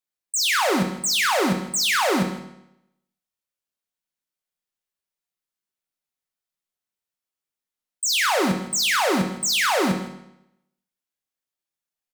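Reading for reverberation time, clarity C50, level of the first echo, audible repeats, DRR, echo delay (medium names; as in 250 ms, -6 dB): 0.80 s, 7.5 dB, -17.0 dB, 1, 4.0 dB, 159 ms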